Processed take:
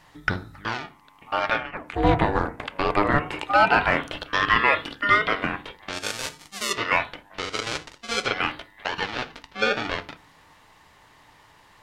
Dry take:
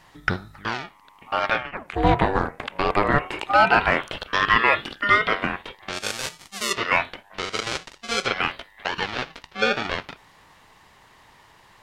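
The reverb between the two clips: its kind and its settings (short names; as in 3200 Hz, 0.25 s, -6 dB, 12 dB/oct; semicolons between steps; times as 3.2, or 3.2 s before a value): FDN reverb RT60 0.38 s, low-frequency decay 1.55×, high-frequency decay 0.4×, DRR 11.5 dB; gain -1.5 dB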